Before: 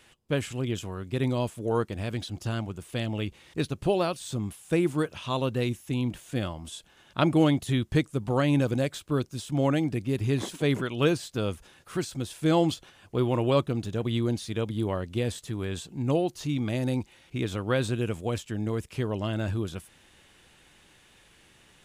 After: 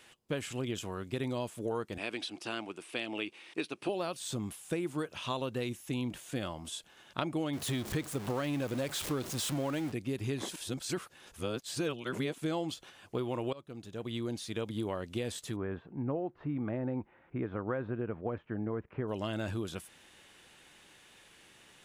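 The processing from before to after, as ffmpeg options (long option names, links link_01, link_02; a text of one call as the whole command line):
ffmpeg -i in.wav -filter_complex "[0:a]asettb=1/sr,asplit=3[link_01][link_02][link_03];[link_01]atrim=end=1.984[link_04];[link_02]atrim=start=1.98:end=3.89,asetpts=PTS-STARTPTS,afade=type=in:duration=0.004:curve=qsin,afade=type=out:start_time=1.906:duration=0.004:curve=qsin,highpass=320,equalizer=frequency=320:width_type=q:width=4:gain=5,equalizer=frequency=540:width_type=q:width=4:gain=-4,equalizer=frequency=2500:width_type=q:width=4:gain=7,equalizer=frequency=6900:width_type=q:width=4:gain=-7,lowpass=frequency=10000:width=0.5412,lowpass=frequency=10000:width=1.3066[link_05];[link_03]atrim=start=3.886[link_06];[link_04][link_05]acrossfade=duration=0.004:curve1=hsin:curve2=qsin[link_07];[link_07][link_06]acrossfade=duration=0.004:curve1=qsin:curve2=hsin,asettb=1/sr,asplit=3[link_08][link_09][link_10];[link_08]atrim=end=7.534[link_11];[link_09]atrim=start=7.53:end=9.92,asetpts=PTS-STARTPTS,afade=type=in:duration=0.004:curve=qsin,afade=type=out:start_time=2.386:duration=0.004:curve=qsin,aeval=exprs='val(0)+0.5*0.0282*sgn(val(0))':channel_layout=same[link_12];[link_10]atrim=start=9.916[link_13];[link_11][link_12]acrossfade=duration=0.004:curve1=hsin:curve2=qsin[link_14];[link_14][link_13]acrossfade=duration=0.004:curve1=qsin:curve2=hsin,asplit=3[link_15][link_16][link_17];[link_15]afade=type=out:start_time=15.55:duration=0.02[link_18];[link_16]lowpass=frequency=1700:width=0.5412,lowpass=frequency=1700:width=1.3066,afade=type=in:start_time=15.55:duration=0.02,afade=type=out:start_time=19.07:duration=0.02[link_19];[link_17]afade=type=in:start_time=19.07:duration=0.02[link_20];[link_18][link_19][link_20]amix=inputs=3:normalize=0,asplit=4[link_21][link_22][link_23][link_24];[link_21]atrim=end=10.562[link_25];[link_22]atrim=start=10.558:end=12.382,asetpts=PTS-STARTPTS,areverse[link_26];[link_23]atrim=start=12.378:end=13.53,asetpts=PTS-STARTPTS,afade=type=out:start_time=1.148:duration=0.004:curve=hsin:silence=0.0794328[link_27];[link_24]atrim=start=13.53,asetpts=PTS-STARTPTS,afade=type=in:duration=1.35:silence=0.0794328[link_28];[link_25][link_26]acrossfade=duration=0.004:curve1=hsin:curve2=hsin[link_29];[link_27][link_28]concat=n=2:v=0:a=1[link_30];[link_29][link_30]acrossfade=duration=0.004:curve1=hsin:curve2=hsin,lowshelf=frequency=130:gain=-11.5,acompressor=threshold=-31dB:ratio=6" out.wav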